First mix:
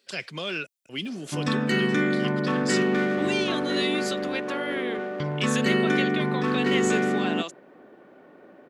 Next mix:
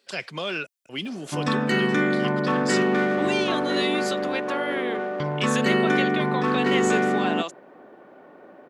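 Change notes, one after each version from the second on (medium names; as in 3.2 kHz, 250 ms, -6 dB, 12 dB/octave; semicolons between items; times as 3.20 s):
master: add peaking EQ 850 Hz +6 dB 1.5 oct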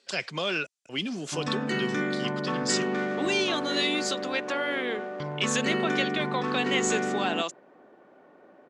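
background -7.0 dB; master: add resonant low-pass 7.1 kHz, resonance Q 1.6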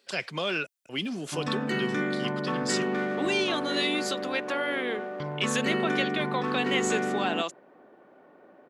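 master: remove resonant low-pass 7.1 kHz, resonance Q 1.6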